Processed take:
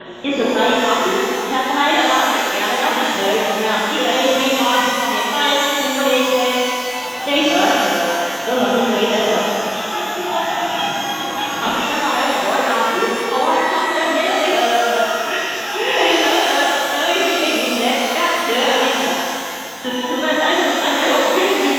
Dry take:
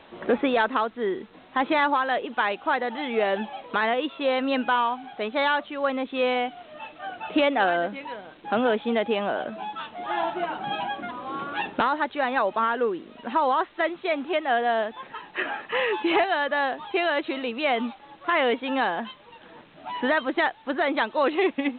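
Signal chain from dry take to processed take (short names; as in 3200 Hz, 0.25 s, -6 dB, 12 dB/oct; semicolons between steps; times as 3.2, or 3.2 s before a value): local time reversal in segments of 0.242 s; resonant high shelf 2600 Hz +7 dB, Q 1.5; shimmer reverb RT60 2.4 s, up +12 st, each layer -8 dB, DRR -7.5 dB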